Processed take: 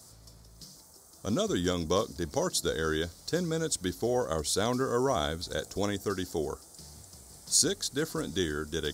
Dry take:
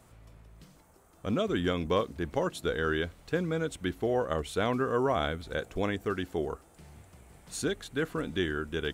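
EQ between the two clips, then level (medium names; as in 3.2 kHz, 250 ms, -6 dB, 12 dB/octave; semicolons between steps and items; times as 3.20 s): high-pass 50 Hz; resonant high shelf 3.6 kHz +11.5 dB, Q 3; 0.0 dB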